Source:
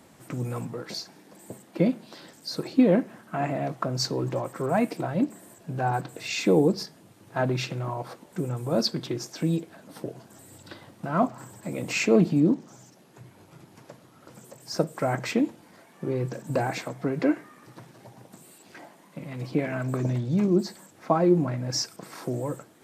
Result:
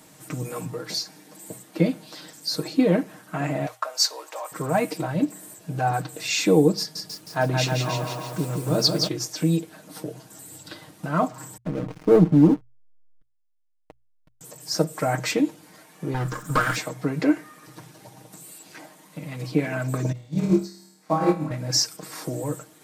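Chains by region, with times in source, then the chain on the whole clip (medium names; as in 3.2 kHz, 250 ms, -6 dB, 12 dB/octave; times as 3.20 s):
3.66–4.52 s: high-pass 640 Hz 24 dB/octave + expander -49 dBFS + treble shelf 12 kHz +3 dB
6.78–9.08 s: delay 171 ms -5 dB + bit-crushed delay 313 ms, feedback 35%, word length 8-bit, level -6.5 dB
11.57–14.41 s: low-pass 1.4 kHz 24 dB/octave + hysteresis with a dead band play -31.5 dBFS + waveshaping leveller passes 1
16.14–16.76 s: comb filter that takes the minimum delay 0.56 ms + peaking EQ 1.3 kHz +12.5 dB 0.74 oct
20.12–21.51 s: flutter echo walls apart 4.5 m, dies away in 0.88 s + upward expansion 2.5:1, over -27 dBFS
whole clip: treble shelf 3.6 kHz +9 dB; hum notches 60/120 Hz; comb 6.5 ms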